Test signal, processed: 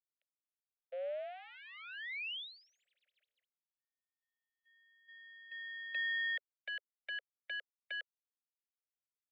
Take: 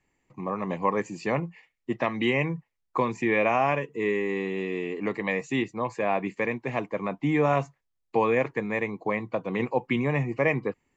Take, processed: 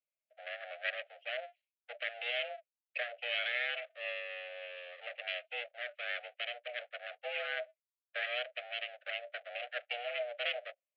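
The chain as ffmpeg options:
ffmpeg -i in.wav -af "aemphasis=mode=reproduction:type=riaa,afftdn=noise_reduction=20:noise_floor=-35,aeval=exprs='abs(val(0))':channel_layout=same,highpass=frequency=220:width_type=q:width=0.5412,highpass=frequency=220:width_type=q:width=1.307,lowpass=frequency=3000:width_type=q:width=0.5176,lowpass=frequency=3000:width_type=q:width=0.7071,lowpass=frequency=3000:width_type=q:width=1.932,afreqshift=360,asuperstop=centerf=990:order=4:qfactor=0.56" out.wav

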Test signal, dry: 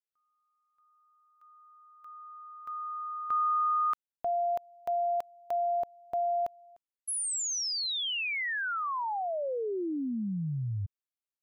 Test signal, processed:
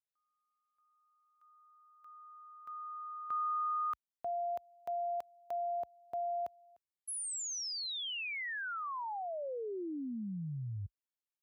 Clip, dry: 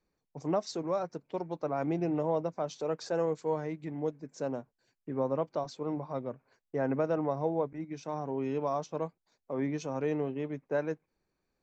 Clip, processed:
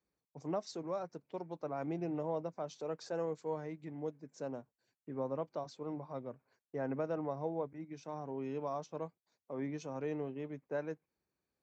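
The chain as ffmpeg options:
ffmpeg -i in.wav -af "highpass=frequency=51:width=0.5412,highpass=frequency=51:width=1.3066,volume=-7dB" out.wav

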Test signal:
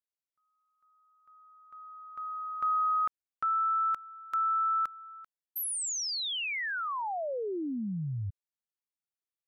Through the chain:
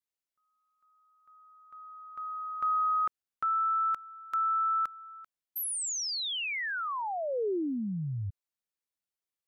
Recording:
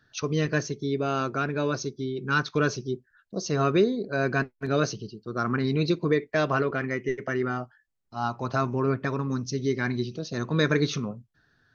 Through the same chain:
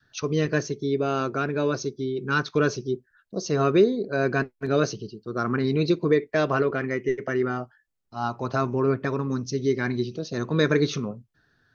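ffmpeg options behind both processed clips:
ffmpeg -i in.wav -af "adynamicequalizer=threshold=0.0126:dfrequency=410:dqfactor=1.3:tfrequency=410:tqfactor=1.3:attack=5:release=100:ratio=0.375:range=2:mode=boostabove:tftype=bell" out.wav

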